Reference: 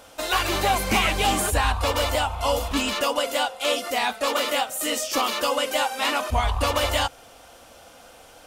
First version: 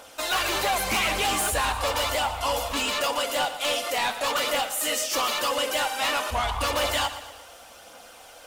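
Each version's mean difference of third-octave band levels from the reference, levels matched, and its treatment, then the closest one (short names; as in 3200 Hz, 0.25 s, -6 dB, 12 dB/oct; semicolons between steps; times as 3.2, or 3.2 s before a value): 3.5 dB: low shelf 300 Hz -11 dB; phaser 0.88 Hz, delay 2.3 ms, feedback 28%; soft clip -22 dBFS, distortion -12 dB; lo-fi delay 0.116 s, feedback 55%, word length 9-bit, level -12.5 dB; gain +2 dB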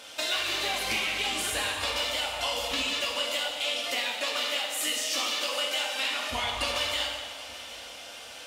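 6.0 dB: weighting filter D; compressor 10:1, threshold -25 dBFS, peak gain reduction 15.5 dB; on a send: echo with dull and thin repeats by turns 0.389 s, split 990 Hz, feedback 66%, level -13 dB; on the sum: plate-style reverb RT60 1.5 s, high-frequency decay 0.95×, DRR 0 dB; gain -4 dB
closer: first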